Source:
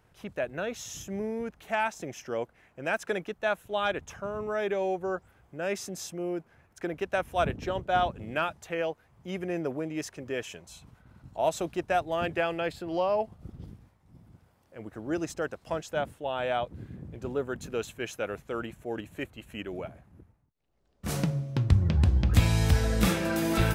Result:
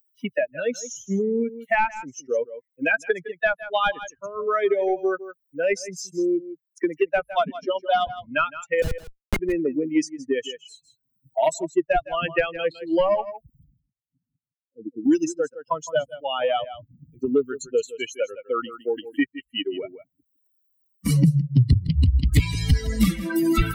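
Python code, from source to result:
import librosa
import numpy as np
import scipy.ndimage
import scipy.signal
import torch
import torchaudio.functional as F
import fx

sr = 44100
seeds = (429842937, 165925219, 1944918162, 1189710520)

y = fx.bin_expand(x, sr, power=3.0)
y = fx.cheby2_lowpass(y, sr, hz=1300.0, order=4, stop_db=60, at=(13.63, 15.04), fade=0.02)
y = fx.fold_sine(y, sr, drive_db=5, ceiling_db=-11.5)
y = fx.ellip_highpass(y, sr, hz=200.0, order=4, stop_db=40, at=(7.31, 8.07))
y = fx.schmitt(y, sr, flips_db=-38.5, at=(8.82, 9.39))
y = y + 10.0 ** (-17.0 / 20.0) * np.pad(y, (int(160 * sr / 1000.0), 0))[:len(y)]
y = fx.band_squash(y, sr, depth_pct=100)
y = y * librosa.db_to_amplitude(6.0)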